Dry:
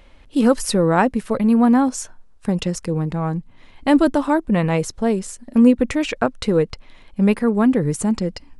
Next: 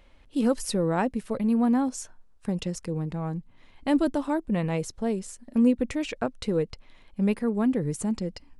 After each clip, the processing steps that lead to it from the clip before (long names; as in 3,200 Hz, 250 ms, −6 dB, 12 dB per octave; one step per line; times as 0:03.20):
dynamic equaliser 1,300 Hz, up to −4 dB, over −36 dBFS, Q 1
level −8 dB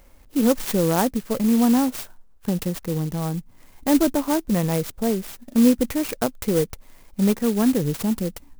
converter with an unsteady clock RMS 0.082 ms
level +5 dB